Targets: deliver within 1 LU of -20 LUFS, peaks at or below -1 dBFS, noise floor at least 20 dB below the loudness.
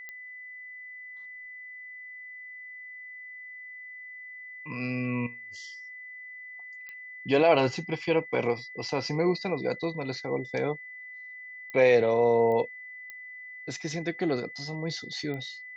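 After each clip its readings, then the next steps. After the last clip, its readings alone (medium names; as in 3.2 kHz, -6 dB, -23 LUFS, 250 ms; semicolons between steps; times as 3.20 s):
clicks found 6; steady tone 2 kHz; tone level -41 dBFS; loudness -28.0 LUFS; peak level -10.0 dBFS; loudness target -20.0 LUFS
-> de-click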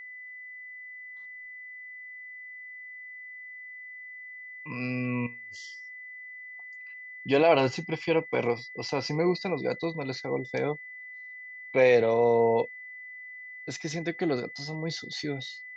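clicks found 0; steady tone 2 kHz; tone level -41 dBFS
-> band-stop 2 kHz, Q 30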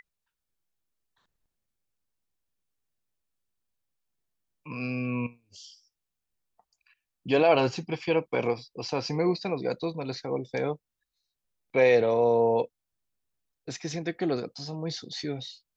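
steady tone not found; loudness -28.0 LUFS; peak level -10.0 dBFS; loudness target -20.0 LUFS
-> trim +8 dB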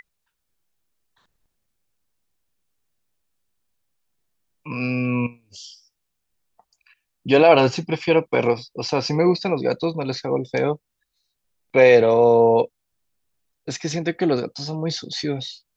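loudness -20.0 LUFS; peak level -2.0 dBFS; noise floor -77 dBFS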